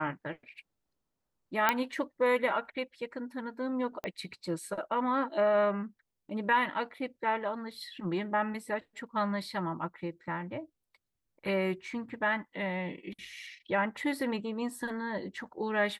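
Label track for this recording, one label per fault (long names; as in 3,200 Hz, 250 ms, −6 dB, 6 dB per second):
1.690000	1.690000	click −10 dBFS
4.040000	4.040000	click −21 dBFS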